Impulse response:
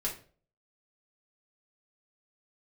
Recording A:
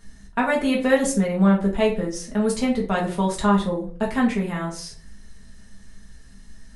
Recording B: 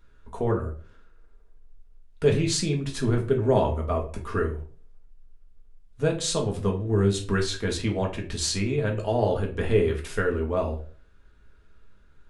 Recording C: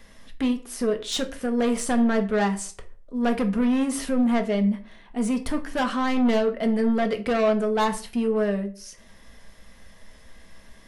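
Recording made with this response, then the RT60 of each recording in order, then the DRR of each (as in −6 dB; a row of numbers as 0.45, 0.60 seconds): A; 0.40, 0.45, 0.40 seconds; −4.0, 0.0, 5.0 decibels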